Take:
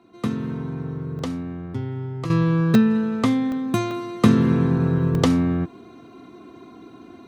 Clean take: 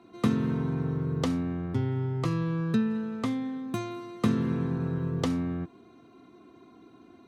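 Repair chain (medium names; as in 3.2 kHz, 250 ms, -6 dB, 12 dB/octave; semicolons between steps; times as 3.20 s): interpolate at 1.19/2.75/3.52/3.91/5.15 s, 1.5 ms; gain correction -10 dB, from 2.30 s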